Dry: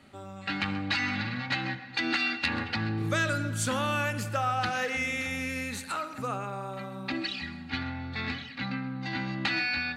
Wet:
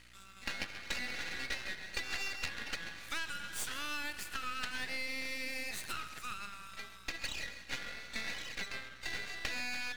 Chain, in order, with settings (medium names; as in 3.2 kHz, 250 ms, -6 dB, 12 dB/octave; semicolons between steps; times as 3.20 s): inverse Chebyshev high-pass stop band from 770 Hz, stop band 40 dB; dynamic bell 6 kHz, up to -5 dB, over -47 dBFS, Q 0.78; compression 6:1, threshold -38 dBFS, peak gain reduction 11.5 dB; hum 60 Hz, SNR 23 dB; half-wave rectifier; trim +6 dB